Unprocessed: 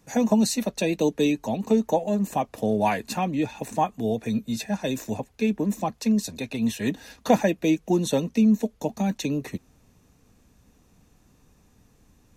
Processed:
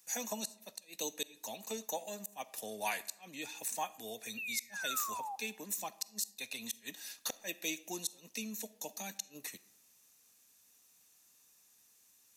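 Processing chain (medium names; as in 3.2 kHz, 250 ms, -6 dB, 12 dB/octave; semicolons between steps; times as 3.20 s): differentiator; painted sound fall, 4.37–5.36 s, 760–2800 Hz -45 dBFS; inverted gate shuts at -26 dBFS, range -32 dB; on a send: reverberation RT60 0.80 s, pre-delay 5 ms, DRR 17 dB; on the sum: trim +4 dB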